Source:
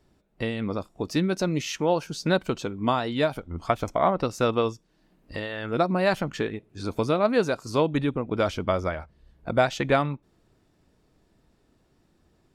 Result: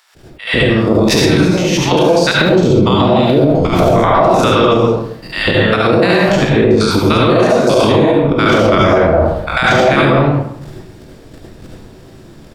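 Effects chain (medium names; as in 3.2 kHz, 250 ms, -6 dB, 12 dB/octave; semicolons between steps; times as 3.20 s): spectrogram pixelated in time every 100 ms; 2.31–3.77 s: fifteen-band graphic EQ 160 Hz +10 dB, 400 Hz +4 dB, 1.6 kHz -12 dB, 10 kHz -7 dB; bands offset in time highs, lows 150 ms, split 1 kHz; compression 5:1, threshold -37 dBFS, peak gain reduction 18.5 dB; harmonic-percussive split percussive +8 dB; level held to a coarse grid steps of 12 dB; flange 0.75 Hz, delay 9.1 ms, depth 9.6 ms, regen +86%; reverberation RT60 0.65 s, pre-delay 67 ms, DRR -3.5 dB; loudness maximiser +34.5 dB; attacks held to a fixed rise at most 150 dB/s; trim -1 dB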